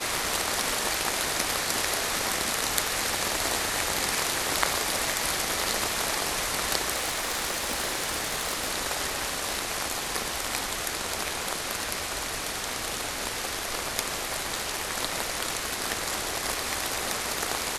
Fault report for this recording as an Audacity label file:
6.950000	8.710000	clipping −23.5 dBFS

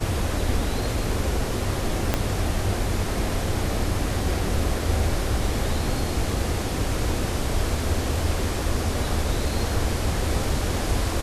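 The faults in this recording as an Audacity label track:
2.140000	2.140000	click −6 dBFS

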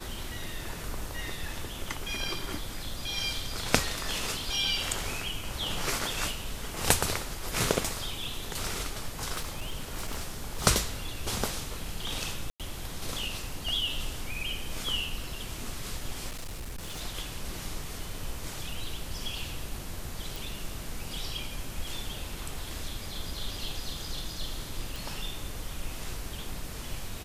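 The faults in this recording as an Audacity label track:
9.350000	10.670000	clipping −28.5 dBFS
12.500000	12.600000	drop-out 97 ms
16.300000	17.010000	clipping −34 dBFS
20.360000	20.360000	click
24.960000	24.960000	click

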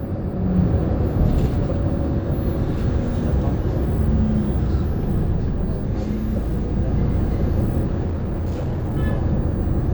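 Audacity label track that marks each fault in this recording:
8.050000	8.960000	clipping −20.5 dBFS

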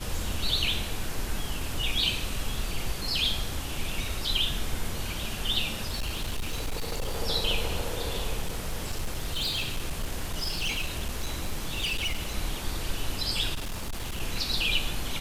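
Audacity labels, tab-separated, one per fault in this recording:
5.890000	7.180000	clipping −26 dBFS
8.420000	12.320000	clipping −25 dBFS
13.540000	14.210000	clipping −29 dBFS

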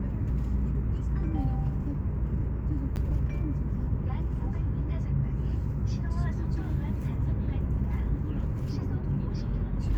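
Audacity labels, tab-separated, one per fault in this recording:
2.960000	2.970000	drop-out 9.4 ms

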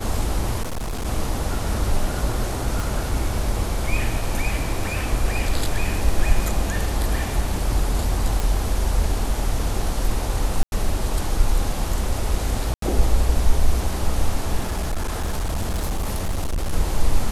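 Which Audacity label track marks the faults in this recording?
0.620000	1.060000	clipping −23.5 dBFS
2.800000	2.800000	click
8.400000	8.400000	click
10.630000	10.720000	drop-out 91 ms
12.740000	12.820000	drop-out 83 ms
14.600000	16.730000	clipping −19.5 dBFS

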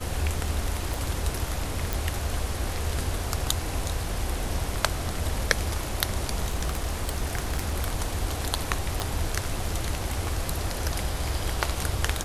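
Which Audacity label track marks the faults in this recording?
0.940000	0.940000	click
1.930000	1.930000	click
6.480000	7.860000	clipping −21.5 dBFS
9.000000	9.000000	click

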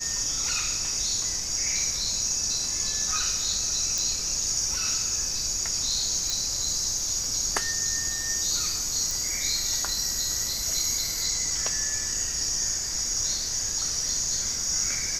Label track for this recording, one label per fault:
3.980000	3.980000	click
6.300000	6.300000	click
9.110000	9.110000	click

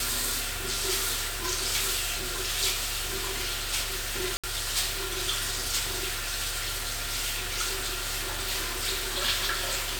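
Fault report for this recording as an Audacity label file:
4.370000	4.440000	drop-out 66 ms

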